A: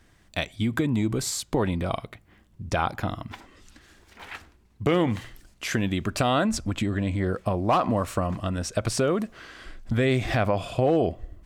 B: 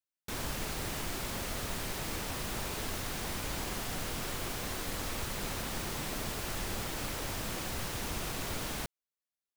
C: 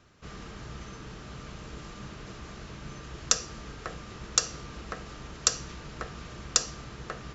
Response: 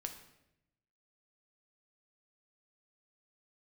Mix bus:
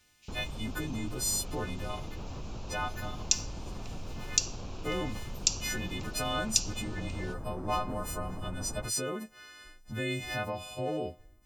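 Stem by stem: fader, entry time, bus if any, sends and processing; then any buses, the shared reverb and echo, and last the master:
-12.0 dB, 0.00 s, no send, partials quantised in pitch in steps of 3 st
-2.0 dB, 0.00 s, no send, low-pass 1.2 kHz 24 dB/octave; bass shelf 170 Hz +10.5 dB; peak limiter -30.5 dBFS, peak gain reduction 10.5 dB
-2.0 dB, 0.00 s, no send, elliptic high-pass 2.4 kHz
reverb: none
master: none

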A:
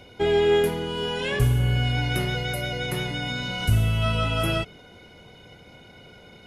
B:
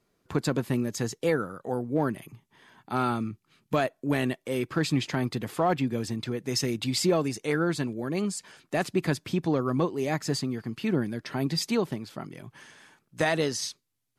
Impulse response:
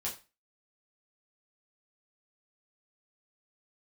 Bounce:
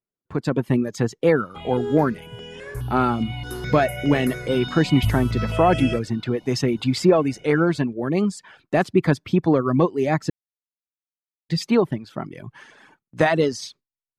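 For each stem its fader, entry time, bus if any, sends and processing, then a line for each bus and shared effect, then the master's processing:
3.17 s -18 dB -> 3.64 s -10 dB, 1.35 s, no send, stepped phaser 4.8 Hz 450–4100 Hz
-1.0 dB, 0.00 s, muted 10.30–11.49 s, no send, reverb removal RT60 0.71 s; low-pass 1.8 kHz 6 dB/octave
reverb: none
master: gate with hold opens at -52 dBFS; level rider gain up to 10 dB

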